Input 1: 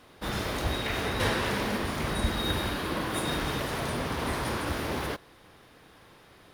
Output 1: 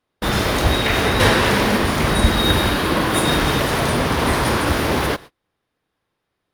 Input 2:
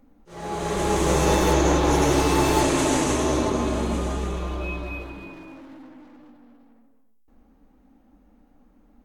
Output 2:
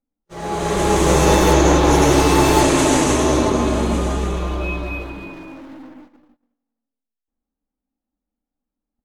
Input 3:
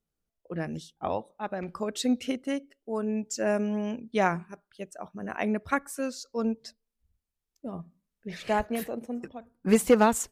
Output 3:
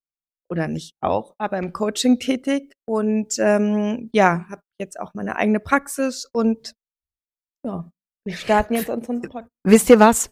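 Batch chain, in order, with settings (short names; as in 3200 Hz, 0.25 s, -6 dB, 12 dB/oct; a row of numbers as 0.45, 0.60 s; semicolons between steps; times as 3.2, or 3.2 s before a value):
gate -46 dBFS, range -34 dB; normalise peaks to -1.5 dBFS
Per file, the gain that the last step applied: +12.5, +6.0, +9.5 dB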